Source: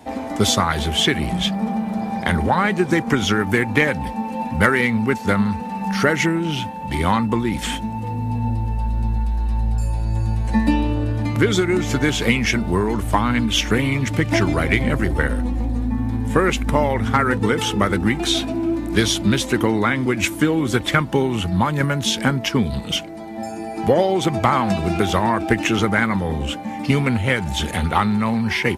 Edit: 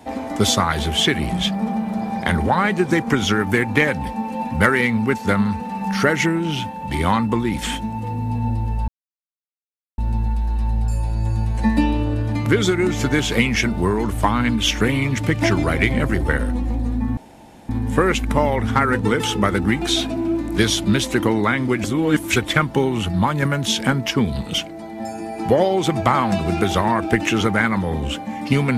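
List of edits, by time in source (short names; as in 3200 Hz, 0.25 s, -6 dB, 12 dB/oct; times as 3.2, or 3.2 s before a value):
8.88 insert silence 1.10 s
16.07 insert room tone 0.52 s
20.22–20.74 reverse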